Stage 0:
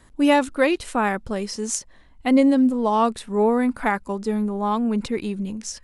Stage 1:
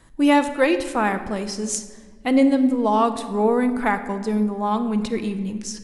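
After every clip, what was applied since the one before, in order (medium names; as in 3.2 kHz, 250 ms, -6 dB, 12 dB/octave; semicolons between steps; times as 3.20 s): reverberation RT60 1.6 s, pre-delay 6 ms, DRR 8 dB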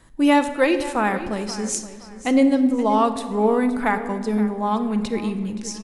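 feedback delay 523 ms, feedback 27%, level -15.5 dB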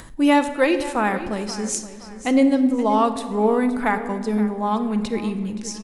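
upward compressor, threshold -32 dBFS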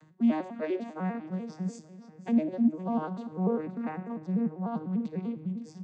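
vocoder on a broken chord minor triad, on D#3, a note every 99 ms; trim -9 dB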